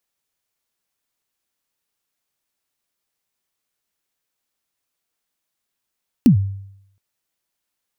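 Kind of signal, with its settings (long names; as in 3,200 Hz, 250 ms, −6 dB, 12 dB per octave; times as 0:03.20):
synth kick length 0.72 s, from 280 Hz, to 98 Hz, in 103 ms, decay 0.75 s, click on, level −5 dB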